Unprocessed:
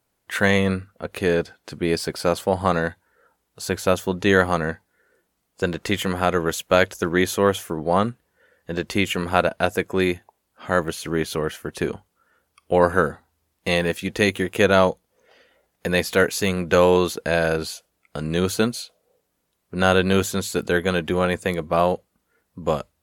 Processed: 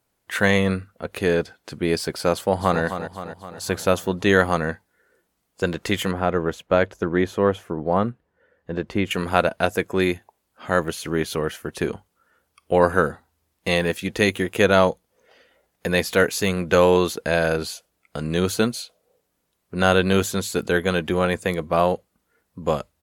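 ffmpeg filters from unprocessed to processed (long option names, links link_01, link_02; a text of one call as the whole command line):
ffmpeg -i in.wav -filter_complex "[0:a]asplit=2[link_01][link_02];[link_02]afade=type=in:start_time=2.33:duration=0.01,afade=type=out:start_time=2.81:duration=0.01,aecho=0:1:260|520|780|1040|1300|1560|1820:0.334965|0.200979|0.120588|0.0723525|0.0434115|0.0260469|0.0156281[link_03];[link_01][link_03]amix=inputs=2:normalize=0,asettb=1/sr,asplit=3[link_04][link_05][link_06];[link_04]atrim=end=6.114[link_07];[link_05]atrim=start=6.11:end=9.11,asetpts=PTS-STARTPTS,afade=type=in:duration=0.004:curve=qsin,afade=type=out:start_time=2.996:duration=0.004:curve=qsin,lowpass=frequency=1200:poles=1[link_08];[link_06]atrim=start=9.106[link_09];[link_07][link_08]acrossfade=duration=0.004:curve1=hsin:curve2=qsin[link_10];[link_10][link_09]acrossfade=duration=0.004:curve1=qsin:curve2=hsin" out.wav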